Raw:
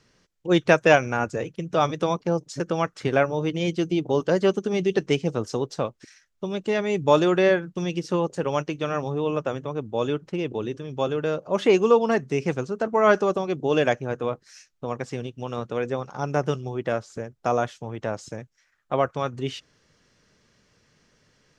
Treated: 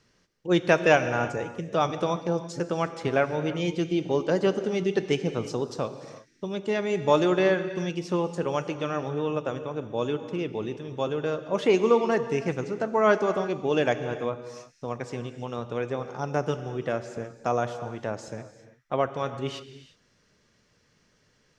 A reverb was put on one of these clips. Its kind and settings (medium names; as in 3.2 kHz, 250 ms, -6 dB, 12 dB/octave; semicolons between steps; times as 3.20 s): gated-style reverb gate 380 ms flat, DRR 10 dB; trim -3 dB